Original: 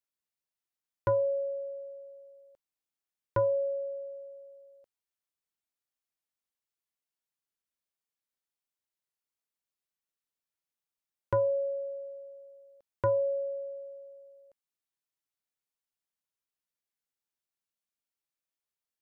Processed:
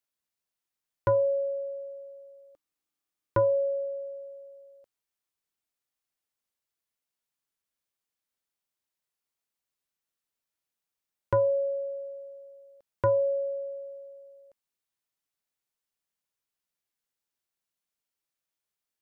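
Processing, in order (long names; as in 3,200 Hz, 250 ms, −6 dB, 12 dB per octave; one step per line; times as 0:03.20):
0:01.15–0:03.85: hollow resonant body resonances 300/1,200 Hz, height 8 dB
level +3 dB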